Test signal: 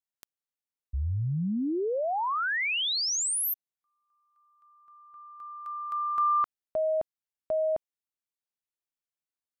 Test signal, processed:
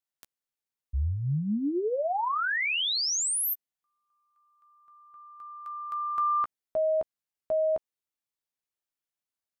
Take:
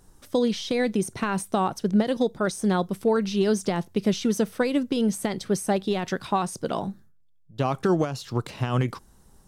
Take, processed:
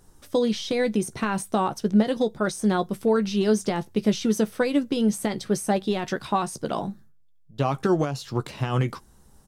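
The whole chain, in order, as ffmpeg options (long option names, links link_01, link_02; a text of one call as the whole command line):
ffmpeg -i in.wav -filter_complex "[0:a]asplit=2[link_01][link_02];[link_02]adelay=14,volume=-9.5dB[link_03];[link_01][link_03]amix=inputs=2:normalize=0" out.wav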